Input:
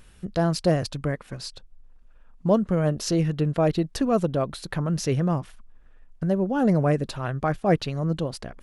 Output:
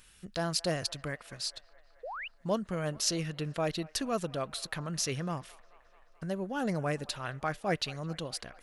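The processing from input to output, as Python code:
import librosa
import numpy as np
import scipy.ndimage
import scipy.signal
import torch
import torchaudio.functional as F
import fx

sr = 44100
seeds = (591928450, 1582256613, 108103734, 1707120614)

y = fx.tilt_shelf(x, sr, db=-7.5, hz=1200.0)
y = fx.echo_wet_bandpass(y, sr, ms=216, feedback_pct=72, hz=1200.0, wet_db=-20.5)
y = fx.spec_paint(y, sr, seeds[0], shape='rise', start_s=2.03, length_s=0.25, low_hz=450.0, high_hz=3100.0, level_db=-34.0)
y = F.gain(torch.from_numpy(y), -5.5).numpy()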